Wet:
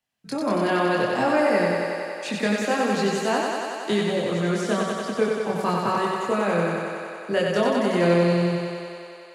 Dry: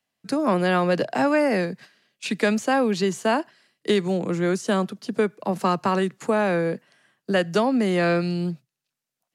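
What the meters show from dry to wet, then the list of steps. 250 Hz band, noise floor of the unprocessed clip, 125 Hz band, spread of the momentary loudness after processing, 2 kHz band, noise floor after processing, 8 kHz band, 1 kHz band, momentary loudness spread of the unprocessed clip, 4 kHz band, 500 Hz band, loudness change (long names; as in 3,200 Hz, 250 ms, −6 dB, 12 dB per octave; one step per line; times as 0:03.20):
−1.0 dB, below −85 dBFS, 0.0 dB, 9 LU, +1.0 dB, −42 dBFS, +1.0 dB, +1.0 dB, 10 LU, +1.0 dB, +1.0 dB, 0.0 dB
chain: multi-voice chorus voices 6, 0.5 Hz, delay 24 ms, depth 1.3 ms
feedback echo with a high-pass in the loop 93 ms, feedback 83%, high-pass 190 Hz, level −3 dB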